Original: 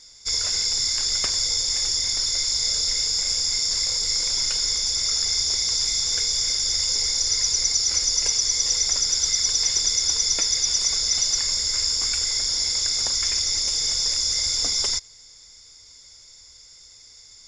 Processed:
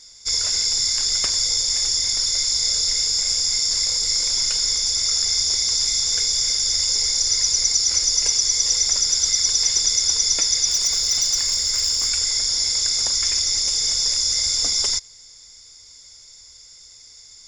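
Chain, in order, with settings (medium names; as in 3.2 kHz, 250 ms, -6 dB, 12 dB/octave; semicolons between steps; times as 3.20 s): treble shelf 5.9 kHz +5.5 dB; 10.66–12.11 s: hard clipper -14 dBFS, distortion -28 dB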